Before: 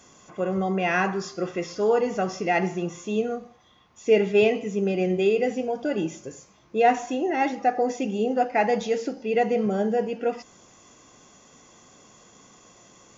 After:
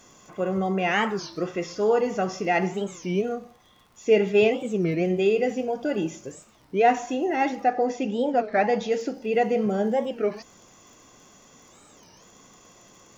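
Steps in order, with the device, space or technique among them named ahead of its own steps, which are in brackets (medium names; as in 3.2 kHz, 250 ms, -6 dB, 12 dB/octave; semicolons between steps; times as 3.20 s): warped LP (warped record 33 1/3 rpm, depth 250 cents; crackle 48 per s -45 dBFS; pink noise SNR 43 dB); 7.63–8.92 s: low-pass 5.9 kHz 12 dB/octave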